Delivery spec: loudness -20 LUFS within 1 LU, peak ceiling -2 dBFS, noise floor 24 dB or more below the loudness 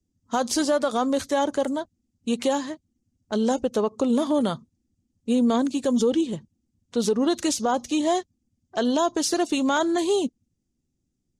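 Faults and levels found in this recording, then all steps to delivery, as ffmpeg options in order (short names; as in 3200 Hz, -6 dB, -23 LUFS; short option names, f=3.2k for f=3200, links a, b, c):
loudness -24.5 LUFS; peak -12.5 dBFS; loudness target -20.0 LUFS
-> -af "volume=4.5dB"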